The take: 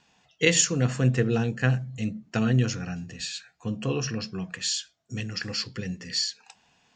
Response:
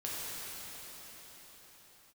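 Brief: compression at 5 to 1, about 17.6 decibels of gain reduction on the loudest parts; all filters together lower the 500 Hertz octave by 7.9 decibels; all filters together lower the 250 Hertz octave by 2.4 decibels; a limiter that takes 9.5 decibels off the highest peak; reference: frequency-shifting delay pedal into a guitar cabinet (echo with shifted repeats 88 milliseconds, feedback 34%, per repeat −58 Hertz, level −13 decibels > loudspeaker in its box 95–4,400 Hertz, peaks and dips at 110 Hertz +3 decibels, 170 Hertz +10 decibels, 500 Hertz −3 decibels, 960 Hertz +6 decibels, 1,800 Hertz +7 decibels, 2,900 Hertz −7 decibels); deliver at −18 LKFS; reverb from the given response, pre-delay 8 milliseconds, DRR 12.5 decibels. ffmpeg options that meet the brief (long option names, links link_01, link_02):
-filter_complex "[0:a]equalizer=frequency=250:width_type=o:gain=-7.5,equalizer=frequency=500:width_type=o:gain=-5,acompressor=threshold=-38dB:ratio=5,alimiter=level_in=7.5dB:limit=-24dB:level=0:latency=1,volume=-7.5dB,asplit=2[link_01][link_02];[1:a]atrim=start_sample=2205,adelay=8[link_03];[link_02][link_03]afir=irnorm=-1:irlink=0,volume=-17dB[link_04];[link_01][link_04]amix=inputs=2:normalize=0,asplit=4[link_05][link_06][link_07][link_08];[link_06]adelay=88,afreqshift=-58,volume=-13dB[link_09];[link_07]adelay=176,afreqshift=-116,volume=-22.4dB[link_10];[link_08]adelay=264,afreqshift=-174,volume=-31.7dB[link_11];[link_05][link_09][link_10][link_11]amix=inputs=4:normalize=0,highpass=95,equalizer=frequency=110:width_type=q:width=4:gain=3,equalizer=frequency=170:width_type=q:width=4:gain=10,equalizer=frequency=500:width_type=q:width=4:gain=-3,equalizer=frequency=960:width_type=q:width=4:gain=6,equalizer=frequency=1800:width_type=q:width=4:gain=7,equalizer=frequency=2900:width_type=q:width=4:gain=-7,lowpass=frequency=4400:width=0.5412,lowpass=frequency=4400:width=1.3066,volume=22.5dB"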